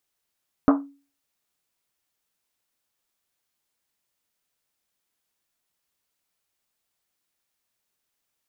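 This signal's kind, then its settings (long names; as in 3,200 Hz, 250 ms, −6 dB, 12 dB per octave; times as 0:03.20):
drum after Risset, pitch 280 Hz, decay 0.37 s, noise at 920 Hz, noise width 820 Hz, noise 30%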